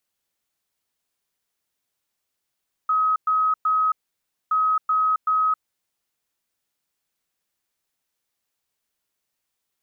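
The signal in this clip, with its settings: beep pattern sine 1270 Hz, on 0.27 s, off 0.11 s, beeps 3, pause 0.59 s, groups 2, -17 dBFS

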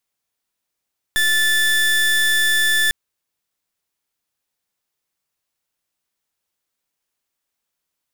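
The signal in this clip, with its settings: pulse 1750 Hz, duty 29% -16.5 dBFS 1.75 s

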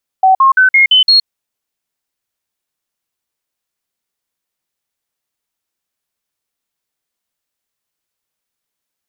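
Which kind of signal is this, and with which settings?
stepped sine 759 Hz up, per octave 2, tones 6, 0.12 s, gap 0.05 s -4.5 dBFS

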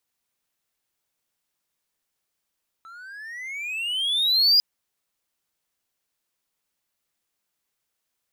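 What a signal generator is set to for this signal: gliding synth tone triangle, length 1.75 s, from 1310 Hz, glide +23 st, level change +28.5 dB, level -11 dB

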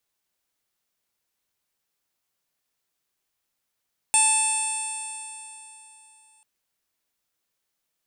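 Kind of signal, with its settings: stretched partials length 2.29 s, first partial 868 Hz, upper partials -18.5/-1/-9.5/-14/-12/-15.5/-3.5/5/3.5 dB, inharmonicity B 0.002, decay 3.25 s, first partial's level -23.5 dB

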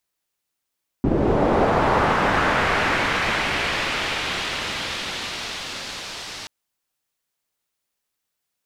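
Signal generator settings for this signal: swept filtered noise white, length 5.43 s lowpass, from 260 Hz, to 4800 Hz, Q 1.2, linear, gain ramp -28 dB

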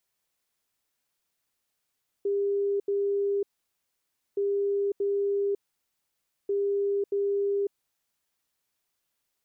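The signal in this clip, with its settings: beep pattern sine 401 Hz, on 0.55 s, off 0.08 s, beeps 2, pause 0.94 s, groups 3, -23.5 dBFS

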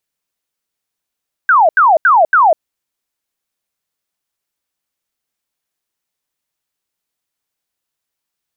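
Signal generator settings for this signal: burst of laser zaps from 1600 Hz, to 600 Hz, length 0.20 s sine, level -5.5 dB, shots 4, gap 0.08 s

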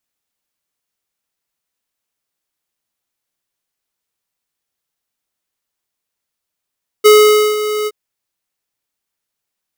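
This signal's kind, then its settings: ADSR square 424 Hz, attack 21 ms, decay 0.496 s, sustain -13 dB, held 0.83 s, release 40 ms -5 dBFS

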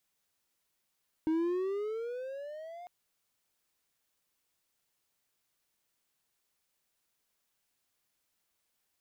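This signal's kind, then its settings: gliding synth tone triangle, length 1.60 s, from 312 Hz, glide +14.5 st, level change -18 dB, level -24 dB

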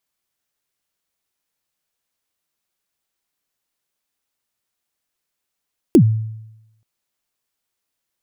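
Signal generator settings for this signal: kick drum length 0.88 s, from 390 Hz, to 110 Hz, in 80 ms, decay 0.91 s, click on, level -4 dB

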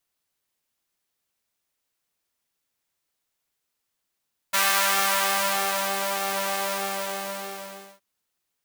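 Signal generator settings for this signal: synth patch with pulse-width modulation G3, interval 0 st, detune 19 cents, sub -14.5 dB, noise -7.5 dB, filter highpass, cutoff 460 Hz, Q 1.1, filter envelope 1.5 oct, filter decay 1.45 s, attack 15 ms, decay 1.41 s, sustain -8 dB, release 1.44 s, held 2.03 s, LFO 1.6 Hz, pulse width 49%, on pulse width 10%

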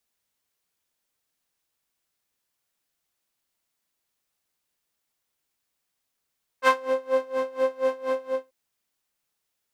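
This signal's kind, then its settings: synth patch with tremolo C5, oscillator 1 saw, detune 19 cents, noise -9 dB, filter bandpass, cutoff 480 Hz, Q 1.3, filter envelope 1.5 oct, filter decay 0.25 s, filter sustain 15%, attack 55 ms, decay 0.18 s, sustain -9.5 dB, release 0.29 s, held 1.60 s, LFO 4.2 Hz, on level 23 dB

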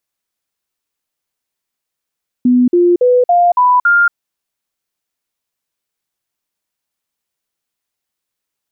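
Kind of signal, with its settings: stepped sine 248 Hz up, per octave 2, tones 6, 0.23 s, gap 0.05 s -6.5 dBFS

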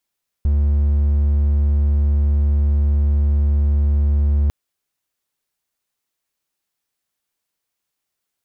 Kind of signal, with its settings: tone triangle 72.4 Hz -11 dBFS 4.05 s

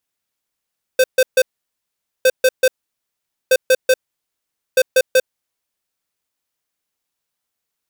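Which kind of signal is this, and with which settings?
beep pattern square 516 Hz, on 0.05 s, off 0.14 s, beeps 3, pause 0.83 s, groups 4, -11 dBFS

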